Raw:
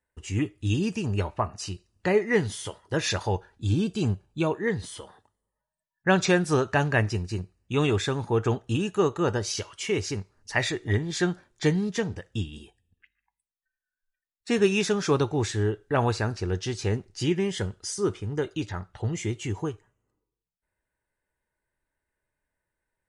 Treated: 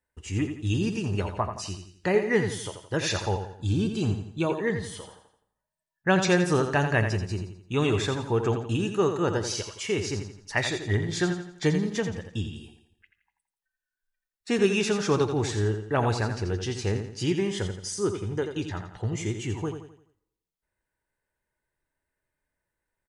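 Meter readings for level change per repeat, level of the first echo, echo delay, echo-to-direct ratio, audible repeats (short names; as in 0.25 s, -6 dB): -7.5 dB, -8.0 dB, 85 ms, -7.0 dB, 4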